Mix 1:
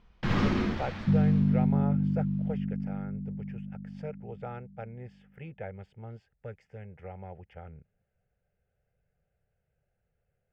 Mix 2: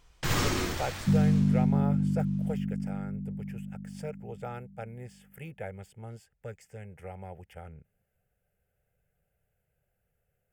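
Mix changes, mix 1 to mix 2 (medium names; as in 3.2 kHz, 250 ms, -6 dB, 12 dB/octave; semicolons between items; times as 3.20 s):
first sound: add peaking EQ 210 Hz -14 dB 0.38 oct; master: remove distance through air 260 m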